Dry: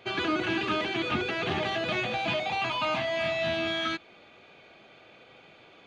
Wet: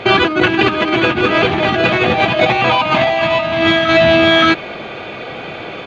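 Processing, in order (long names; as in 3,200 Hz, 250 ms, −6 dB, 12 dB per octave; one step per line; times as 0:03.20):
low-pass filter 2,500 Hz 6 dB per octave
on a send: single-tap delay 572 ms −4 dB
on the sum: compressor whose output falls as the input rises −33 dBFS, ratio −0.5
boost into a limiter +23 dB
level −1 dB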